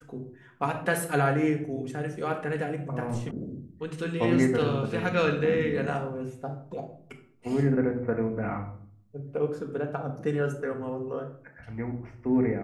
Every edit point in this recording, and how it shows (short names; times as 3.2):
3.31 sound cut off